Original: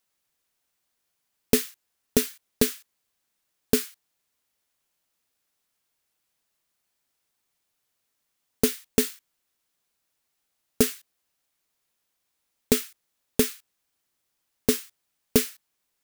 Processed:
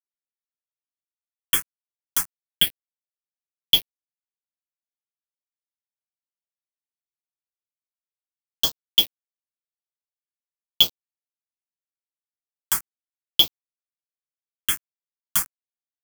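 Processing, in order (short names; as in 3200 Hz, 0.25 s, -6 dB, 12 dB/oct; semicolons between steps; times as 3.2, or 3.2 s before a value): four-band scrambler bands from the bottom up 2413; comb 6.2 ms, depth 68%; sample gate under -23 dBFS; phaser stages 4, 0.38 Hz, lowest notch 490–2200 Hz; mismatched tape noise reduction encoder only; gain +3 dB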